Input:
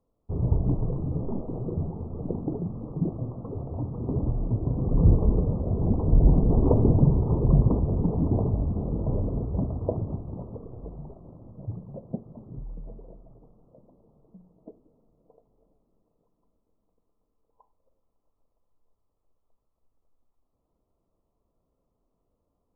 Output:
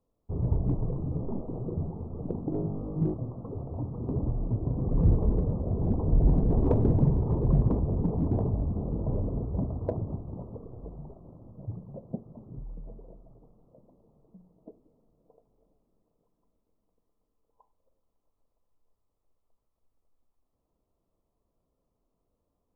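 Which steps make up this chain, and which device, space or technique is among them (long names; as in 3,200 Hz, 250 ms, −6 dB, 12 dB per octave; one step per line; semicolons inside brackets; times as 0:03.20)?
0:02.50–0:03.14: flutter between parallel walls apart 3.3 metres, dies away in 0.61 s
parallel distortion (in parallel at −8 dB: hard clipping −19 dBFS, distortion −9 dB)
on the sum: level −5.5 dB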